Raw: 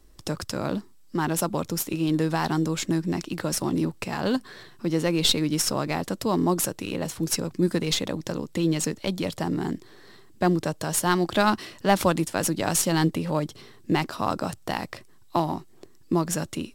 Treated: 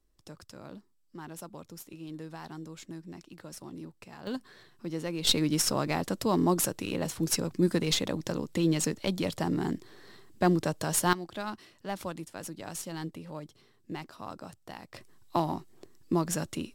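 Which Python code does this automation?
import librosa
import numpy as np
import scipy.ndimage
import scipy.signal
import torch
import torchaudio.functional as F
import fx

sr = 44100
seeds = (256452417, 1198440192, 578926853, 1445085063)

y = fx.gain(x, sr, db=fx.steps((0.0, -18.0), (4.27, -10.5), (5.27, -2.5), (11.13, -15.5), (14.94, -4.0)))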